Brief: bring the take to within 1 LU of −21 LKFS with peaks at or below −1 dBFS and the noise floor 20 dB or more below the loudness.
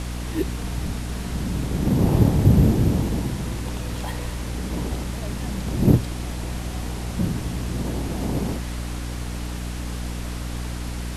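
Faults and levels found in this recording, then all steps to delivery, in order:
mains hum 60 Hz; hum harmonics up to 300 Hz; level of the hum −28 dBFS; background noise floor −30 dBFS; target noise floor −45 dBFS; integrated loudness −25.0 LKFS; sample peak −2.5 dBFS; target loudness −21.0 LKFS
→ hum removal 60 Hz, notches 5
noise reduction from a noise print 15 dB
level +4 dB
brickwall limiter −1 dBFS

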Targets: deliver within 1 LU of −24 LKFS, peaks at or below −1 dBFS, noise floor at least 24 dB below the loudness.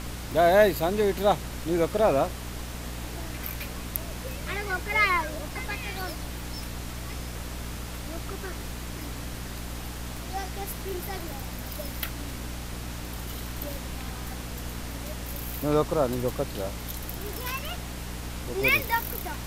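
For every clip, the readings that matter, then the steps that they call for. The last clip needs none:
mains hum 60 Hz; hum harmonics up to 300 Hz; level of the hum −35 dBFS; background noise floor −37 dBFS; target noise floor −54 dBFS; integrated loudness −29.5 LKFS; sample peak −5.0 dBFS; target loudness −24.0 LKFS
→ mains-hum notches 60/120/180/240/300 Hz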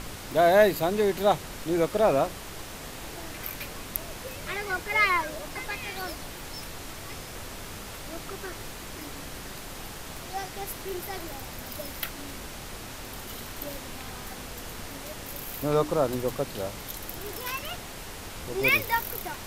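mains hum none found; background noise floor −41 dBFS; target noise floor −54 dBFS
→ noise reduction from a noise print 13 dB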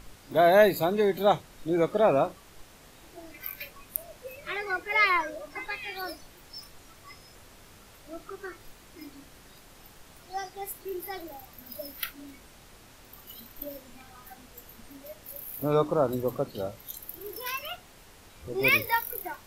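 background noise floor −53 dBFS; integrated loudness −28.0 LKFS; sample peak −5.5 dBFS; target loudness −24.0 LKFS
→ level +4 dB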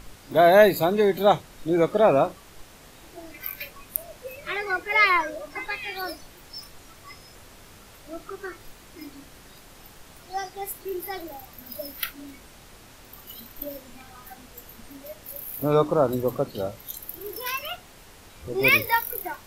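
integrated loudness −24.0 LKFS; sample peak −1.5 dBFS; background noise floor −49 dBFS

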